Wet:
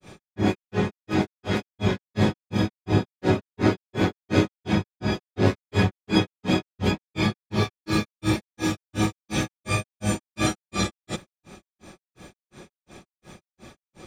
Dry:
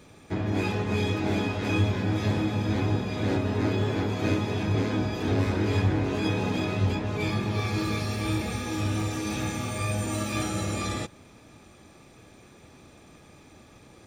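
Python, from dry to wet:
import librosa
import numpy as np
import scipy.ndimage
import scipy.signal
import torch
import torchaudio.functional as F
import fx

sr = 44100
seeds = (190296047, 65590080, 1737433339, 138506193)

y = x + 0.39 * np.pad(x, (int(5.4 * sr / 1000.0), 0))[:len(x)]
y = fx.granulator(y, sr, seeds[0], grain_ms=200.0, per_s=2.8, spray_ms=100.0, spread_st=0)
y = y * 10.0 ** (8.5 / 20.0)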